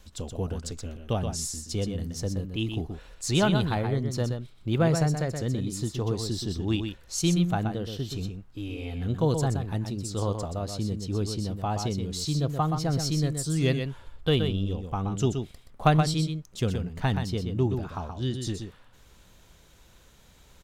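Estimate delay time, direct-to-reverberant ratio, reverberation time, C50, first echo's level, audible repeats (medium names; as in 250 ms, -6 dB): 125 ms, no reverb, no reverb, no reverb, -6.5 dB, 1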